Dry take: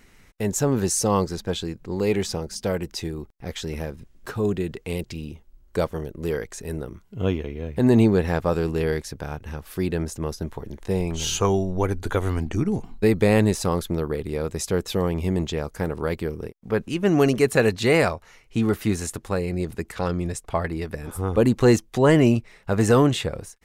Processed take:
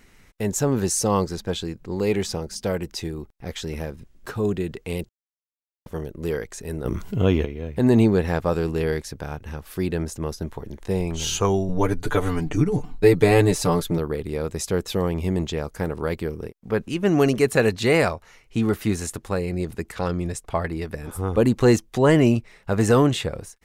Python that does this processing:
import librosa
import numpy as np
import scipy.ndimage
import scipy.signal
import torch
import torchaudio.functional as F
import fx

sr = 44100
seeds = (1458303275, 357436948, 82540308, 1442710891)

y = fx.env_flatten(x, sr, amount_pct=50, at=(6.84, 7.44), fade=0.02)
y = fx.comb(y, sr, ms=6.8, depth=0.96, at=(11.68, 13.98))
y = fx.edit(y, sr, fx.silence(start_s=5.09, length_s=0.77), tone=tone)